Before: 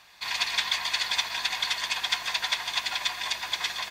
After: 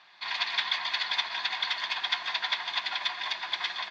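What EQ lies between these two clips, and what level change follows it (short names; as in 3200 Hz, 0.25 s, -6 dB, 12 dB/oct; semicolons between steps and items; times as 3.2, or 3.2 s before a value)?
speaker cabinet 240–4200 Hz, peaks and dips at 260 Hz -5 dB, 490 Hz -10 dB, 2600 Hz -4 dB; 0.0 dB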